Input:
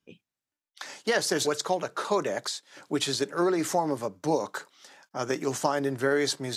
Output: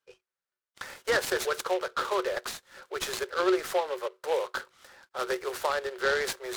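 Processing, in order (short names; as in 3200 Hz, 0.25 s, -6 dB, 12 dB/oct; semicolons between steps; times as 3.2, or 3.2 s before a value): rippled Chebyshev high-pass 360 Hz, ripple 9 dB; noise-modulated delay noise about 2300 Hz, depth 0.04 ms; gain +4 dB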